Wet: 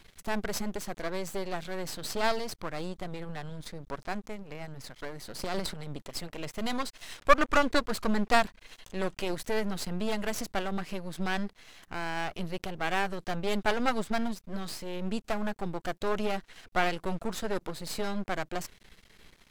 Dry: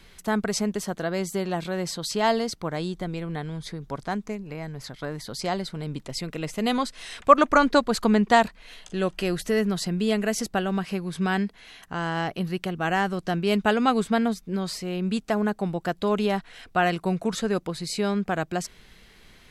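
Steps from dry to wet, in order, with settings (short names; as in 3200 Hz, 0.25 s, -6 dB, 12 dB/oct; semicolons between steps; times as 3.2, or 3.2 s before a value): half-wave rectifier; 5.43–5.87 transient shaper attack -9 dB, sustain +11 dB; gain -1.5 dB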